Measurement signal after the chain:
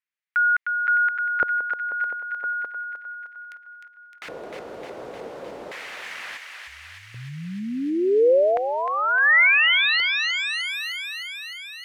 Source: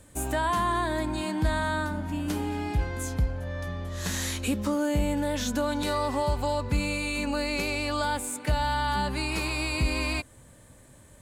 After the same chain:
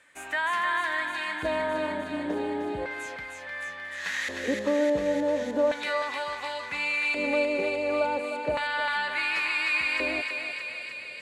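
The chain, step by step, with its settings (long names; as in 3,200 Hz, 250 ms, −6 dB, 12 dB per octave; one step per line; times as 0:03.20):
low-shelf EQ 130 Hz −5.5 dB
auto-filter band-pass square 0.35 Hz 500–2,000 Hz
on a send: feedback echo with a high-pass in the loop 306 ms, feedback 77%, high-pass 1,000 Hz, level −4 dB
on the sum: level +9 dB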